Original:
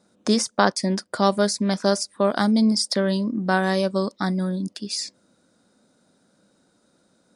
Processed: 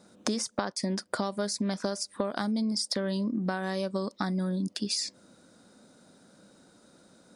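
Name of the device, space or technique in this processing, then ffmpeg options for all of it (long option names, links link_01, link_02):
serial compression, leveller first: -af "acompressor=threshold=-22dB:ratio=2,acompressor=threshold=-33dB:ratio=5,volume=5dB"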